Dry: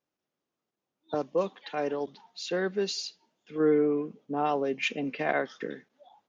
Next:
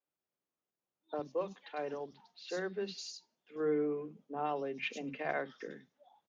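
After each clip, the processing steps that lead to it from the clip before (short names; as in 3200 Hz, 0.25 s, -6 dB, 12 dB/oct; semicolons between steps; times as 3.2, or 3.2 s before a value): three bands offset in time mids, lows, highs 50/100 ms, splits 260/4300 Hz; gain -7.5 dB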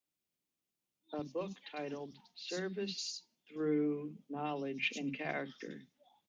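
band shelf 830 Hz -8.5 dB 2.4 oct; gain +4 dB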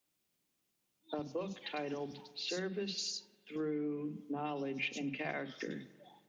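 compressor 4:1, threshold -44 dBFS, peak gain reduction 13 dB; reverb RT60 1.7 s, pre-delay 44 ms, DRR 16.5 dB; gain +7.5 dB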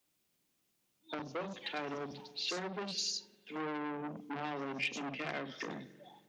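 core saturation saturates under 2200 Hz; gain +3 dB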